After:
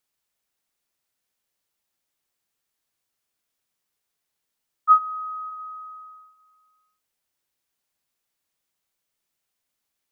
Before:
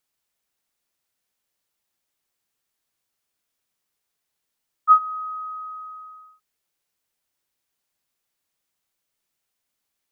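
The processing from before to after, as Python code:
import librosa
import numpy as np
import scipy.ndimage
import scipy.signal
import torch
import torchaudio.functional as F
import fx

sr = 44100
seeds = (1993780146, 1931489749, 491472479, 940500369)

y = x + 10.0 ** (-22.0 / 20.0) * np.pad(x, (int(614 * sr / 1000.0), 0))[:len(x)]
y = y * 10.0 ** (-1.0 / 20.0)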